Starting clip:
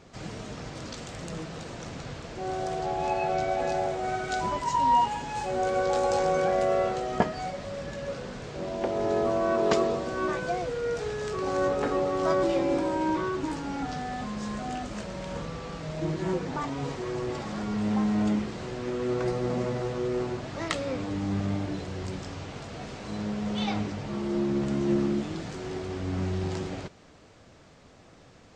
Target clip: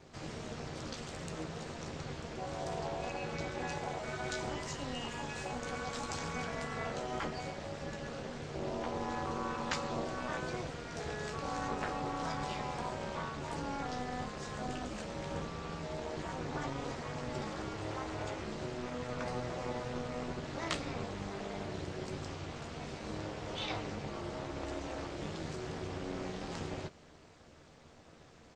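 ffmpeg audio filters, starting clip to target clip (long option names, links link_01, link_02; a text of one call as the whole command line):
ffmpeg -i in.wav -filter_complex "[0:a]asplit=2[link_01][link_02];[link_02]adelay=13,volume=-6dB[link_03];[link_01][link_03]amix=inputs=2:normalize=0,afftfilt=real='re*lt(hypot(re,im),0.2)':imag='im*lt(hypot(re,im),0.2)':win_size=1024:overlap=0.75,tremolo=f=250:d=0.788,volume=-1.5dB" out.wav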